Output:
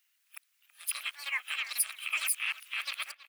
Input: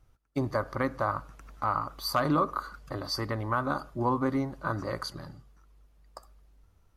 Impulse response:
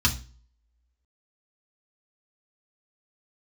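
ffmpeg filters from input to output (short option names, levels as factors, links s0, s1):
-filter_complex "[0:a]areverse,highpass=f=810:w=0.5412,highpass=f=810:w=1.3066,alimiter=limit=0.0708:level=0:latency=1:release=22,aemphasis=mode=production:type=75fm,asetrate=93492,aresample=44100,asplit=2[s0][s1];[s1]adelay=325,lowpass=f=1600:p=1,volume=0.266,asplit=2[s2][s3];[s3]adelay=325,lowpass=f=1600:p=1,volume=0.23,asplit=2[s4][s5];[s5]adelay=325,lowpass=f=1600:p=1,volume=0.23[s6];[s2][s4][s6]amix=inputs=3:normalize=0[s7];[s0][s7]amix=inputs=2:normalize=0,asplit=3[s8][s9][s10];[s9]asetrate=22050,aresample=44100,atempo=2,volume=0.158[s11];[s10]asetrate=55563,aresample=44100,atempo=0.793701,volume=0.251[s12];[s8][s11][s12]amix=inputs=3:normalize=0"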